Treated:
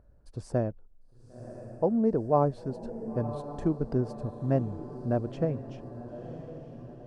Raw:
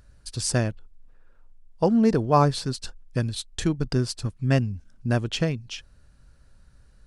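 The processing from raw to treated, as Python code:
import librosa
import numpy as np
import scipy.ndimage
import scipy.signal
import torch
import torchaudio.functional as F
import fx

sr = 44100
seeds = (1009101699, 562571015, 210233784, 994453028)

y = fx.rider(x, sr, range_db=4, speed_s=2.0)
y = fx.curve_eq(y, sr, hz=(130.0, 620.0, 3300.0), db=(0, 7, -20))
y = fx.echo_diffused(y, sr, ms=1016, feedback_pct=54, wet_db=-12.0)
y = y * 10.0 ** (-8.5 / 20.0)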